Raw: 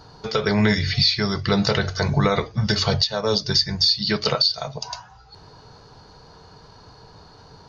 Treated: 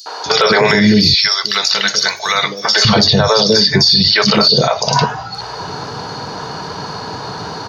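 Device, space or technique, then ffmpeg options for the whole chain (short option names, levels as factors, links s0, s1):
loud club master: -filter_complex "[0:a]highpass=170,asettb=1/sr,asplit=3[s0][s1][s2];[s0]atrim=end=0.884[s3];[s1]atrim=start=0.88:end=2.59,asetpts=PTS-STARTPTS,afade=t=in:d=0.004:c=qsin,afade=t=out:st=1.706:d=0.004:c=qsin,aderivative[s4];[s2]atrim=start=2.586[s5];[s3][s4]acrossfade=d=0.004:c1=hsin:c2=qsin[s6];[s6][s5]acrossfade=d=0.004:c1=qsin:c2=hsin,acrossover=split=450|4500[s7][s8][s9];[s8]adelay=60[s10];[s7]adelay=260[s11];[s11][s10][s9]amix=inputs=3:normalize=0,acompressor=threshold=0.0398:ratio=2.5,asoftclip=type=hard:threshold=0.15,alimiter=level_in=18.8:limit=0.891:release=50:level=0:latency=1,volume=0.891"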